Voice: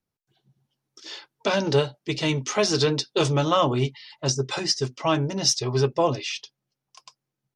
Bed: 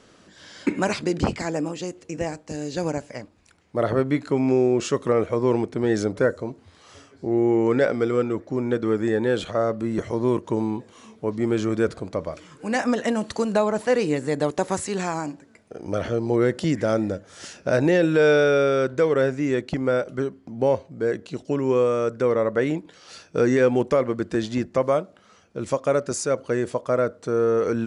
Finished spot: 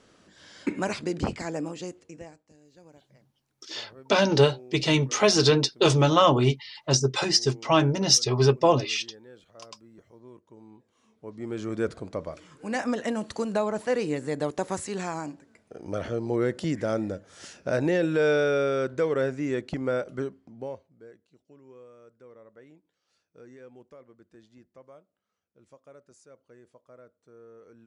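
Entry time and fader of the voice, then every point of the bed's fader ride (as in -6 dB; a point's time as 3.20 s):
2.65 s, +2.0 dB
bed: 1.90 s -5.5 dB
2.60 s -27.5 dB
10.54 s -27.5 dB
11.85 s -5.5 dB
20.25 s -5.5 dB
21.26 s -30 dB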